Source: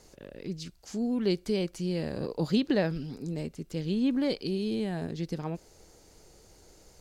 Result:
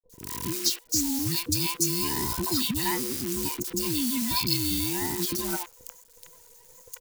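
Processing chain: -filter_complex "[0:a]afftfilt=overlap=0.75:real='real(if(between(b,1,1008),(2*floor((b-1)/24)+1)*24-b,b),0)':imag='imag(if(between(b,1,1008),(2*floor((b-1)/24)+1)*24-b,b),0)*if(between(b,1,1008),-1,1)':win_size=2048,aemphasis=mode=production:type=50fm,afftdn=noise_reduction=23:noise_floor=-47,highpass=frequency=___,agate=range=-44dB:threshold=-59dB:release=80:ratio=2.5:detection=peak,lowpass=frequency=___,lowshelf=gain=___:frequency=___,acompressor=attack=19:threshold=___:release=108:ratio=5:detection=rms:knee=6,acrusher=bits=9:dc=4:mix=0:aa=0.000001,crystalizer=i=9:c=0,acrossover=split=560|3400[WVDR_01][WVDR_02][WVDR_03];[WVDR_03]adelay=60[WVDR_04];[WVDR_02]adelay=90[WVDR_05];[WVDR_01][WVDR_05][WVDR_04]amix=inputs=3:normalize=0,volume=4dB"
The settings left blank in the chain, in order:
65, 4.9k, 3.5, 420, -33dB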